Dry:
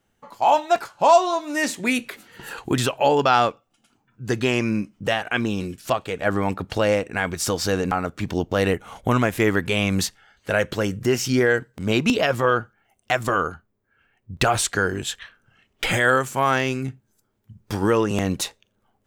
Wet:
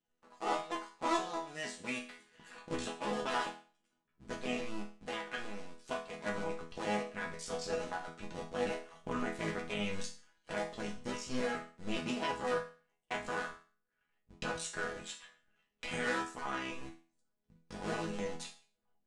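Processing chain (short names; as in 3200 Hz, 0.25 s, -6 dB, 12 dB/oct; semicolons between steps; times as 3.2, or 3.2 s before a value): cycle switcher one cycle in 2, muted; steep low-pass 9400 Hz 36 dB/oct; resonator bank E3 major, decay 0.39 s; gain +3 dB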